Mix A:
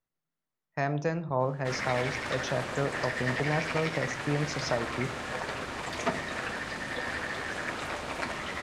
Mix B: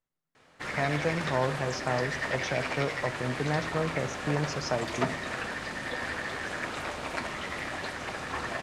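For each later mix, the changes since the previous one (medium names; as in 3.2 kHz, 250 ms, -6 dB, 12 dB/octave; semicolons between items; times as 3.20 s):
background: entry -1.05 s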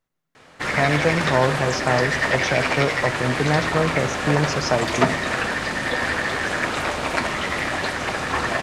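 speech +9.0 dB; background +11.0 dB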